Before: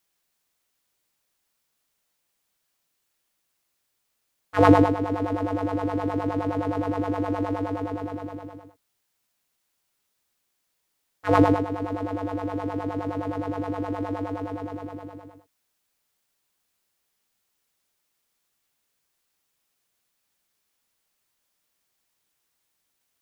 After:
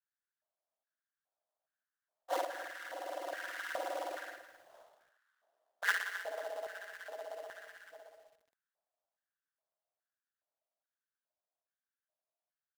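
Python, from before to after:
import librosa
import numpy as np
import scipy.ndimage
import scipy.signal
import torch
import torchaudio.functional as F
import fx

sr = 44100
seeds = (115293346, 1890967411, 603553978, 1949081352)

p1 = fx.doppler_pass(x, sr, speed_mps=29, closest_m=2.5, pass_at_s=8.69)
p2 = scipy.signal.sosfilt(scipy.signal.butter(12, 310.0, 'highpass', fs=sr, output='sos'), p1)
p3 = fx.sample_hold(p2, sr, seeds[0], rate_hz=2400.0, jitter_pct=20)
p4 = fx.stretch_grains(p3, sr, factor=0.55, grain_ms=28.0)
p5 = fx.vibrato(p4, sr, rate_hz=2.9, depth_cents=7.6)
p6 = fx.filter_lfo_highpass(p5, sr, shape='square', hz=1.2, low_hz=640.0, high_hz=1600.0, q=6.5)
p7 = p6 + fx.echo_single(p6, sr, ms=174, db=-13.0, dry=0)
p8 = fx.echo_crushed(p7, sr, ms=265, feedback_pct=35, bits=12, wet_db=-14)
y = p8 * librosa.db_to_amplitude(14.0)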